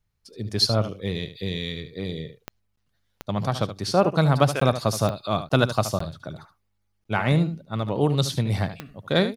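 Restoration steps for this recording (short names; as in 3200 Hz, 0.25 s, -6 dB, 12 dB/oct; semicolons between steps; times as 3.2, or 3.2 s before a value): de-click; interpolate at 2.76/4.6/5.49/5.99/7.04, 14 ms; inverse comb 74 ms -11.5 dB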